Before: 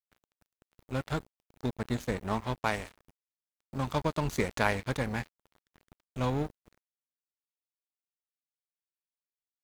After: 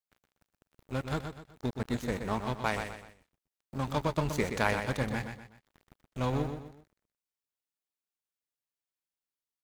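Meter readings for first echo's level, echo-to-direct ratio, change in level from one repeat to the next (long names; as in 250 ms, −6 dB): −7.5 dB, −7.0 dB, −8.5 dB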